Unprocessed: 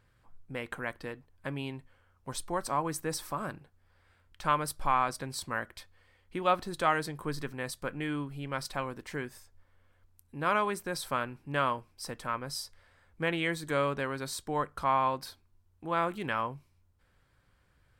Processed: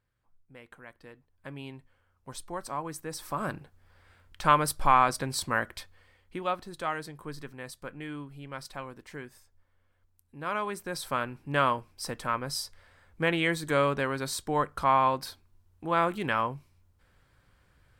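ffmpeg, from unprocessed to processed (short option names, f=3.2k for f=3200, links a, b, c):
-af "volume=15dB,afade=t=in:st=0.9:d=0.8:silence=0.375837,afade=t=in:st=3.14:d=0.42:silence=0.316228,afade=t=out:st=5.75:d=0.8:silence=0.281838,afade=t=in:st=10.45:d=1.15:silence=0.354813"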